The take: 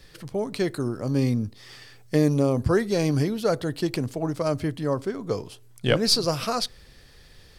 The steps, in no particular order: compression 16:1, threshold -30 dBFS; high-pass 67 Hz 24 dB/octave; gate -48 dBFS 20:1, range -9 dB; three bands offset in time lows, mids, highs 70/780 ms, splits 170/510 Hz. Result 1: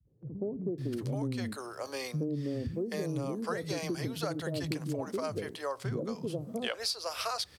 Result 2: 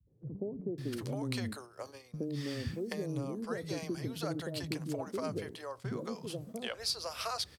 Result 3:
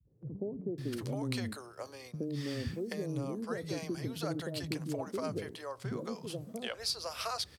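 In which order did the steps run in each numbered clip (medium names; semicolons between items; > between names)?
three bands offset in time > gate > compression > high-pass; high-pass > compression > three bands offset in time > gate; compression > three bands offset in time > gate > high-pass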